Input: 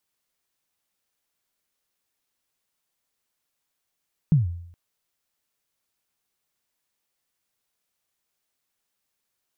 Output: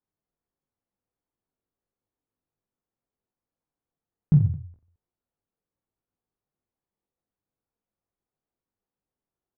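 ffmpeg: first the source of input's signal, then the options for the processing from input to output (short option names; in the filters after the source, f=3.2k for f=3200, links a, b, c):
-f lavfi -i "aevalsrc='0.266*pow(10,-3*t/0.7)*sin(2*PI*(170*0.148/log(86/170)*(exp(log(86/170)*min(t,0.148)/0.148)-1)+86*max(t-0.148,0)))':d=0.42:s=44100"
-filter_complex "[0:a]bandreject=f=610:w=15,adynamicsmooth=sensitivity=5.5:basefreq=750,asplit=2[a][b];[b]aecho=0:1:20|48|87.2|142.1|218.9:0.631|0.398|0.251|0.158|0.1[c];[a][c]amix=inputs=2:normalize=0"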